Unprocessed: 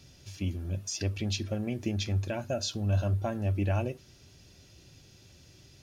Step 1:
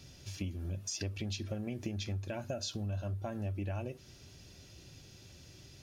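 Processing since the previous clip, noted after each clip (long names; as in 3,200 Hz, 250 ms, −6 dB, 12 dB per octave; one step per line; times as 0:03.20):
downward compressor 6 to 1, threshold −36 dBFS, peak gain reduction 12.5 dB
level +1 dB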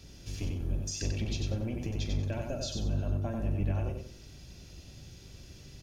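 sub-octave generator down 1 octave, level +3 dB
double-tracking delay 41 ms −12 dB
repeating echo 93 ms, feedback 28%, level −4 dB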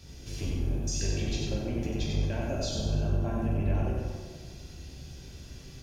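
dense smooth reverb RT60 1.6 s, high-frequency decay 0.55×, DRR −2 dB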